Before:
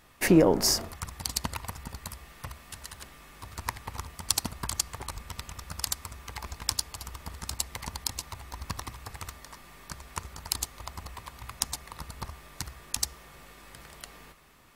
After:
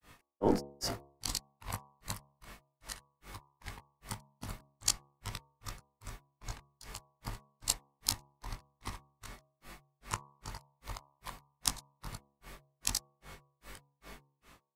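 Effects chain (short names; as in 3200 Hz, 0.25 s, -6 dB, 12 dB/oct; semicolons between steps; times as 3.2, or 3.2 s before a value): short-time reversal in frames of 41 ms; grains 0.217 s, grains 2.5/s, pitch spread up and down by 0 st; de-hum 70.19 Hz, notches 17; gain +5 dB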